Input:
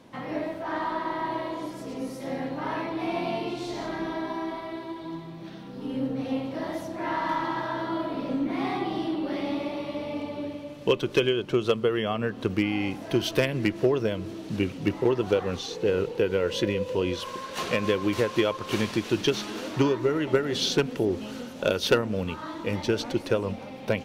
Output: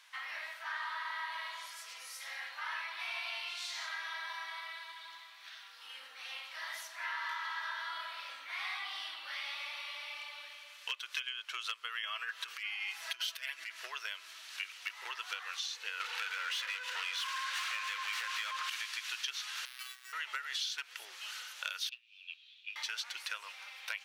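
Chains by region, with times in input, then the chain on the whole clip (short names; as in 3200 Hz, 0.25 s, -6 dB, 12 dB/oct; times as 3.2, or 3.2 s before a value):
12.03–13.71 comb 6.1 ms, depth 84% + negative-ratio compressor -27 dBFS
16–18.7 HPF 340 Hz + high shelf 6200 Hz +6.5 dB + overdrive pedal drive 27 dB, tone 1600 Hz, clips at -12.5 dBFS
19.65–20.13 pre-emphasis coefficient 0.9 + robotiser 381 Hz + careless resampling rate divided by 6×, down none, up hold
21.89–22.76 rippled Chebyshev high-pass 2400 Hz, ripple 3 dB + modulation noise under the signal 19 dB + air absorption 350 m
whole clip: HPF 1400 Hz 24 dB/oct; compressor, threshold -38 dBFS; gain +2.5 dB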